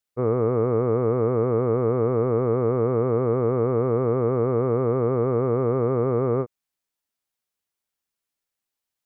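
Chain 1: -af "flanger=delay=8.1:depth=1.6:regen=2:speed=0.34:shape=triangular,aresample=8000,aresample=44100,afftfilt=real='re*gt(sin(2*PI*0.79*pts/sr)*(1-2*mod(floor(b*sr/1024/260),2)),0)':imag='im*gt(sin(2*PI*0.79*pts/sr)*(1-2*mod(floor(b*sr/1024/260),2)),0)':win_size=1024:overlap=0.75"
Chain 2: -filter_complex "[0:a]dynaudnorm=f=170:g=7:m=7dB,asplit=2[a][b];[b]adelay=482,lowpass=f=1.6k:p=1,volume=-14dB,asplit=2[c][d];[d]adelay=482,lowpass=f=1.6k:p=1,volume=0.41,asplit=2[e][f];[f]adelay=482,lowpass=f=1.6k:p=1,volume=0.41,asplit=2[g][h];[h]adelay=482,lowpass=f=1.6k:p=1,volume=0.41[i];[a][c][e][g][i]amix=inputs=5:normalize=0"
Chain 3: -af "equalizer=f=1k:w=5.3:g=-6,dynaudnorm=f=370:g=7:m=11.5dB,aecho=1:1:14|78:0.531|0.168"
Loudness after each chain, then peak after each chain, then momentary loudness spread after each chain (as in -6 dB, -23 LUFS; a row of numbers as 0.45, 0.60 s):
-27.5, -16.0, -13.5 LUFS; -16.0, -4.0, -1.5 dBFS; 4, 6, 7 LU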